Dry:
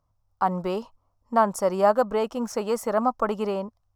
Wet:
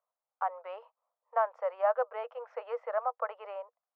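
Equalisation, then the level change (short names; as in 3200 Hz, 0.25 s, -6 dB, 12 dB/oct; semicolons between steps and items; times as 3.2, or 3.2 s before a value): rippled Chebyshev high-pass 470 Hz, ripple 3 dB; LPF 2400 Hz 24 dB/oct; -6.5 dB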